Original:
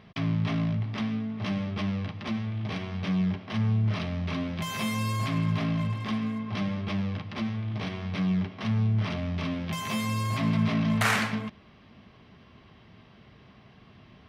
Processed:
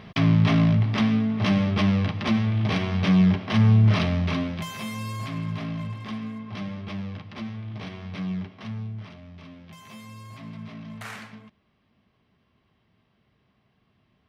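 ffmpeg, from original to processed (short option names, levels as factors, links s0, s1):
-af "volume=2.66,afade=t=out:st=4.03:d=0.71:silence=0.251189,afade=t=out:st=8.33:d=0.82:silence=0.298538"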